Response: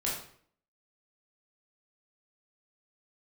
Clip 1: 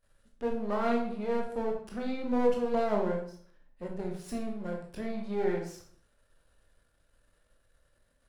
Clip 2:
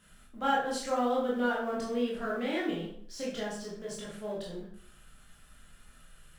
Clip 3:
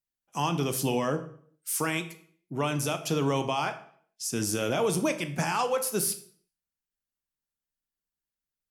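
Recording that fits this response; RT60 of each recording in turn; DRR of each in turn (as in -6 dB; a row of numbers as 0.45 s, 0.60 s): 2; 0.55 s, 0.55 s, 0.55 s; 0.0 dB, -5.5 dB, 8.5 dB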